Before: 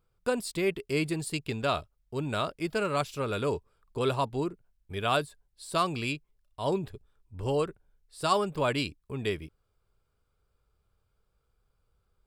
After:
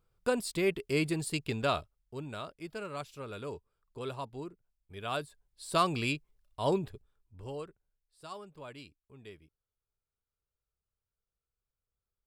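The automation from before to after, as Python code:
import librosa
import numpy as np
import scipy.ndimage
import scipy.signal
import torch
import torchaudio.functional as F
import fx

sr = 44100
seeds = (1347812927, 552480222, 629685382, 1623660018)

y = fx.gain(x, sr, db=fx.line((1.66, -1.0), (2.4, -11.0), (4.93, -11.0), (5.72, 0.0), (6.72, 0.0), (7.48, -12.0), (8.24, -19.0)))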